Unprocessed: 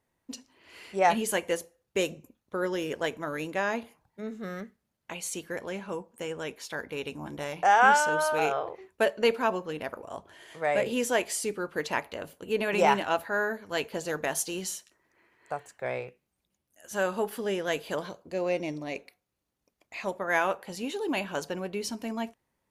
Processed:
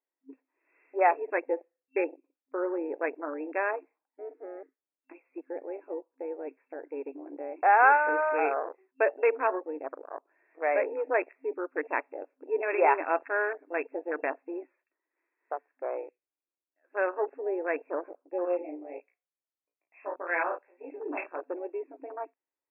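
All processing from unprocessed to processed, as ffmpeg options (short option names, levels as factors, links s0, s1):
-filter_complex "[0:a]asettb=1/sr,asplit=3[s0][s1][s2];[s0]atrim=end=18.454[s3];[s1]atrim=start=18.45:end=21.41,asetpts=PTS-STARTPTS,afade=t=in:d=0.004:c=qsin,afade=t=out:st=2.956:d=0.004:c=qsin,bass=f=250:g=-13,treble=f=4000:g=13,flanger=delay=16.5:depth=3.6:speed=1.7,asplit=2[s4][s5];[s5]adelay=34,volume=0.531[s6];[s4][s6]amix=inputs=2:normalize=0,atrim=end_sample=130536[s7];[s2]atrim=start=21.406[s8];[s3][s7]acrossfade=d=0.004:c1=hsin:c2=qsin[s9];[s9][s8]acrossfade=d=0.004:c1=qsin:c2=hsin,afwtdn=0.0224,afftfilt=real='re*between(b*sr/4096,260,2700)':imag='im*between(b*sr/4096,260,2700)':win_size=4096:overlap=0.75"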